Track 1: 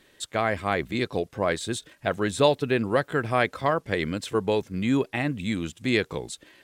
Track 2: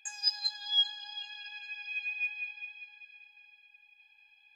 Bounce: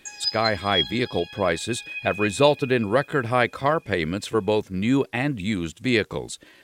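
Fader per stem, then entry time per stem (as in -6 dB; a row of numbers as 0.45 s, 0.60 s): +2.5 dB, +3.0 dB; 0.00 s, 0.00 s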